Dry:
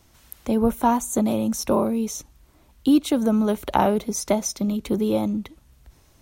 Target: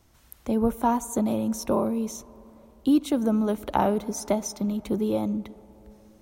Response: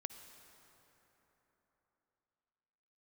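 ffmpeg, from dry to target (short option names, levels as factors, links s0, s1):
-filter_complex "[0:a]asplit=2[s0][s1];[1:a]atrim=start_sample=2205,lowpass=2100[s2];[s1][s2]afir=irnorm=-1:irlink=0,volume=0.562[s3];[s0][s3]amix=inputs=2:normalize=0,volume=0.501"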